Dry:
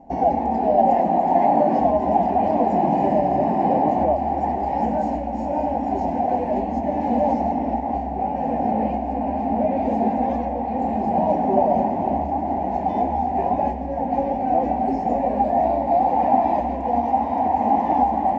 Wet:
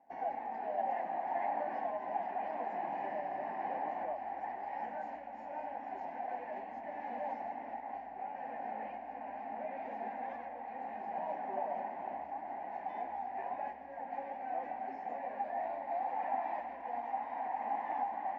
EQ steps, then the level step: band-pass filter 1.7 kHz, Q 2.5; -4.5 dB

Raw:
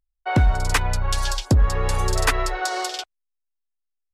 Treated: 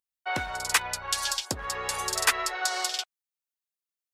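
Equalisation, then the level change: high-pass 1.4 kHz 6 dB/octave; treble shelf 8.7 kHz +4 dB; 0.0 dB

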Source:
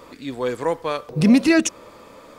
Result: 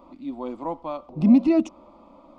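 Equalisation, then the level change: tape spacing loss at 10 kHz 28 dB; peaking EQ 6.1 kHz -6.5 dB 2.1 oct; static phaser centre 450 Hz, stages 6; 0.0 dB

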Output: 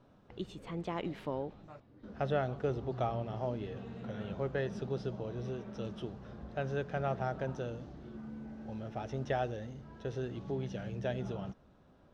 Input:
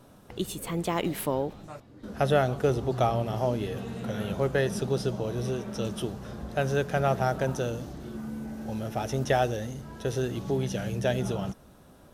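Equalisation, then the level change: distance through air 170 m; -8.5 dB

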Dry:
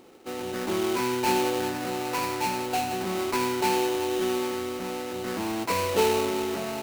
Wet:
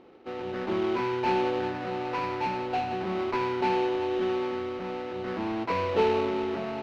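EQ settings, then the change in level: distance through air 280 m; treble shelf 11 kHz -4.5 dB; hum notches 50/100/150/200/250/300 Hz; 0.0 dB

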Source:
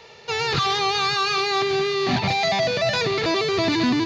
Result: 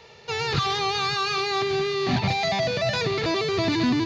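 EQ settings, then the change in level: peaking EQ 80 Hz +6 dB 2.6 oct; -3.5 dB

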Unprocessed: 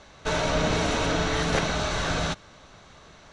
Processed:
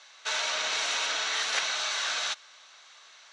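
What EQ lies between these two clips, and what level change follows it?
band-pass 750–7700 Hz; tilt shelf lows -8 dB, about 1.3 kHz; -3.0 dB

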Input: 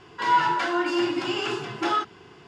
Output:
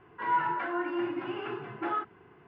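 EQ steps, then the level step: low-pass 2.2 kHz 24 dB/octave; -7.0 dB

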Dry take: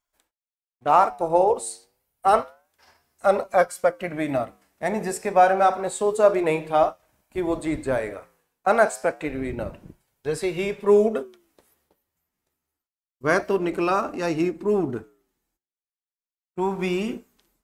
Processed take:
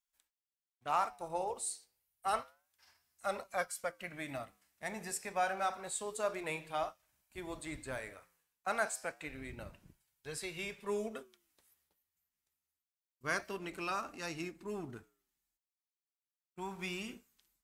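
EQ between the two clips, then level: amplifier tone stack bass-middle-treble 5-5-5; 0.0 dB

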